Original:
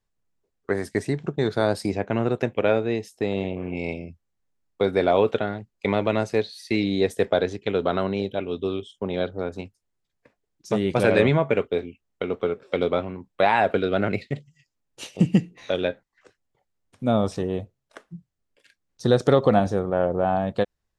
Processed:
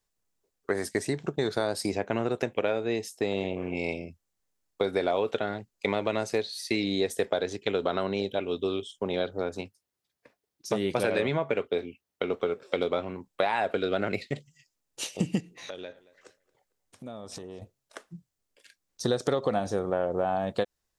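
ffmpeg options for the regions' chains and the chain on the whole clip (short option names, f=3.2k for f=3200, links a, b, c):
-filter_complex "[0:a]asettb=1/sr,asplit=3[a][b][c];[a]atrim=end=9.594[d];[b]atrim=start=9.59:end=12.31,asetpts=PTS-STARTPTS,afade=t=in:d=0.004:c=qsin,afade=t=out:st=2.716:d=0.004:c=qsin,highpass=59,equalizer=f=7.3k:w=2.4:g=-5.5[e];[c]atrim=start=12.306[f];[d][e]acrossfade=d=0.004:c1=hsin:c2=qsin[g];[g][f]acrossfade=d=0.004:c1=qsin:c2=hsin,asettb=1/sr,asplit=3[h][i][j];[h]atrim=end=15.404[k];[i]atrim=start=15.4:end=17.62,asetpts=PTS-STARTPTS,afade=t=in:d=0.004:c=qsin,afade=t=out:st=2.216:d=0.004:c=qsin,acompressor=threshold=-36dB:ratio=6:attack=3.2:release=140:knee=1:detection=peak,asplit=2[l][m];[m]adelay=226,lowpass=f=3.3k:p=1,volume=-20.5dB,asplit=2[n][o];[o]adelay=226,lowpass=f=3.3k:p=1,volume=0.34,asplit=2[p][q];[q]adelay=226,lowpass=f=3.3k:p=1,volume=0.34[r];[l][n][p][r]amix=inputs=4:normalize=0,atrim=end_sample=97902[s];[j]atrim=start=17.616[t];[k][s]acrossfade=d=0.004:c1=hsin:c2=qsin[u];[u][t]acrossfade=d=0.004:c1=qsin:c2=hsin,bass=f=250:g=-6,treble=f=4k:g=7,acompressor=threshold=-23dB:ratio=5"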